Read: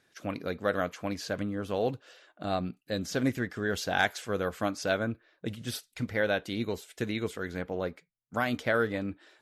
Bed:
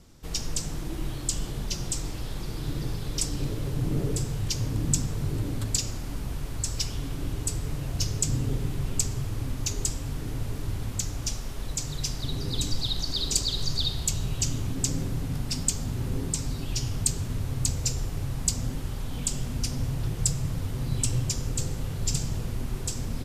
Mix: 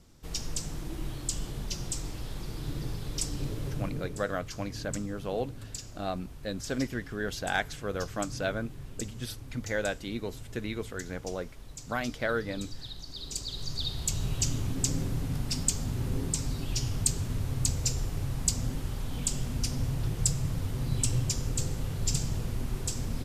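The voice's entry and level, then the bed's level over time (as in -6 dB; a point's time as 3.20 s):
3.55 s, -3.0 dB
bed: 3.71 s -4 dB
4.20 s -13.5 dB
13.08 s -13.5 dB
14.26 s -1.5 dB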